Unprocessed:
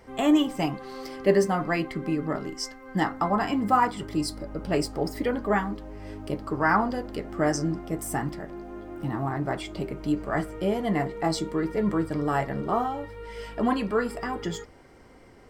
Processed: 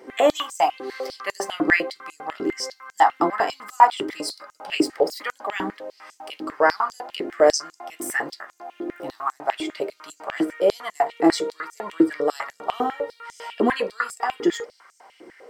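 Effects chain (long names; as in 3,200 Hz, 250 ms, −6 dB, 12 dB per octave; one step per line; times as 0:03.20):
high-pass on a step sequencer 10 Hz 330–6,700 Hz
level +3 dB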